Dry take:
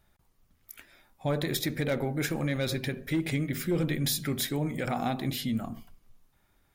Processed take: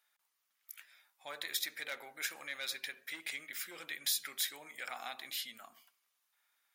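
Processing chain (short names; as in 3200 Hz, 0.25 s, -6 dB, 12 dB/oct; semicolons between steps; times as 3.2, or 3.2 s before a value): HPF 1400 Hz 12 dB/oct; gain -3 dB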